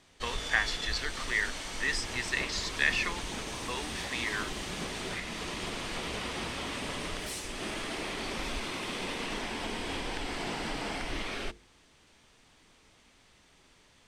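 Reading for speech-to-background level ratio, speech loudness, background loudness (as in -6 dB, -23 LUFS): 3.5 dB, -32.5 LUFS, -36.0 LUFS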